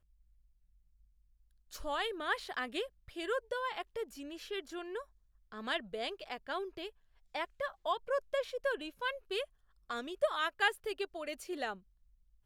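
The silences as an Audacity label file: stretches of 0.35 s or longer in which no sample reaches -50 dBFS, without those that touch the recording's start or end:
5.030000	5.520000	silence
6.900000	7.340000	silence
9.450000	9.900000	silence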